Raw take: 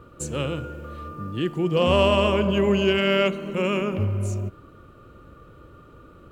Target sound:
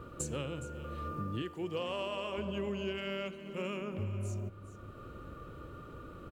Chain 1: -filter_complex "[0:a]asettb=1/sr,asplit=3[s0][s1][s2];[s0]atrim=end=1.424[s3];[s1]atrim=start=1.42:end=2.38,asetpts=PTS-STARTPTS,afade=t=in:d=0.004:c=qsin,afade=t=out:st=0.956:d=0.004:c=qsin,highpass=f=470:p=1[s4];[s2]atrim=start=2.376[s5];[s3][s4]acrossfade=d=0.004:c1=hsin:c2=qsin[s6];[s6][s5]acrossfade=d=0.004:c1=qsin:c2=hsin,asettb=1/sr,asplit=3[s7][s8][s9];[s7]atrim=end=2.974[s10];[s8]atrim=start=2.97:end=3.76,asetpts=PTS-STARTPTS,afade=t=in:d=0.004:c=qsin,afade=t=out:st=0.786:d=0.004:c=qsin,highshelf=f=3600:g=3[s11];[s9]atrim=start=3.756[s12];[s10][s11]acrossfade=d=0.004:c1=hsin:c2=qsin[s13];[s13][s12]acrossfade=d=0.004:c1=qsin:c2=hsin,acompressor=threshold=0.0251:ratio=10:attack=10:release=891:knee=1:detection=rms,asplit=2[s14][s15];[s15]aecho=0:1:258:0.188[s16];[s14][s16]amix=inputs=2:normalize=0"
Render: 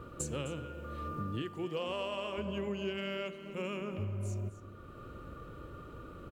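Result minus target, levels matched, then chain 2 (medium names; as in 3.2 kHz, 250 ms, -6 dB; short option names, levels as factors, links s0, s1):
echo 158 ms early
-filter_complex "[0:a]asettb=1/sr,asplit=3[s0][s1][s2];[s0]atrim=end=1.424[s3];[s1]atrim=start=1.42:end=2.38,asetpts=PTS-STARTPTS,afade=t=in:d=0.004:c=qsin,afade=t=out:st=0.956:d=0.004:c=qsin,highpass=f=470:p=1[s4];[s2]atrim=start=2.376[s5];[s3][s4]acrossfade=d=0.004:c1=hsin:c2=qsin[s6];[s6][s5]acrossfade=d=0.004:c1=qsin:c2=hsin,asettb=1/sr,asplit=3[s7][s8][s9];[s7]atrim=end=2.974[s10];[s8]atrim=start=2.97:end=3.76,asetpts=PTS-STARTPTS,afade=t=in:d=0.004:c=qsin,afade=t=out:st=0.786:d=0.004:c=qsin,highshelf=f=3600:g=3[s11];[s9]atrim=start=3.756[s12];[s10][s11]acrossfade=d=0.004:c1=hsin:c2=qsin[s13];[s13][s12]acrossfade=d=0.004:c1=qsin:c2=hsin,acompressor=threshold=0.0251:ratio=10:attack=10:release=891:knee=1:detection=rms,asplit=2[s14][s15];[s15]aecho=0:1:416:0.188[s16];[s14][s16]amix=inputs=2:normalize=0"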